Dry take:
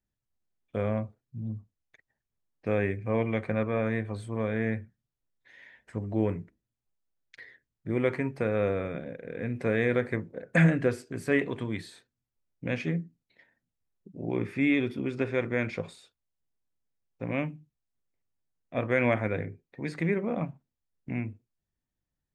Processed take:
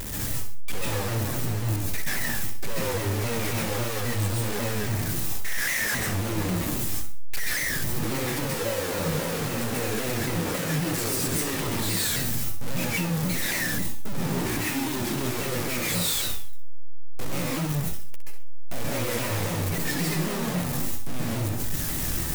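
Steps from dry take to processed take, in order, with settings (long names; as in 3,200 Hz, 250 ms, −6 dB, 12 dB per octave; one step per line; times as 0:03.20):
sign of each sample alone
high-shelf EQ 7,400 Hz +10.5 dB
flutter between parallel walls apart 11 metres, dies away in 0.43 s
convolution reverb RT60 0.35 s, pre-delay 128 ms, DRR −4.5 dB
pitch modulation by a square or saw wave saw down 3.7 Hz, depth 160 cents
level −3.5 dB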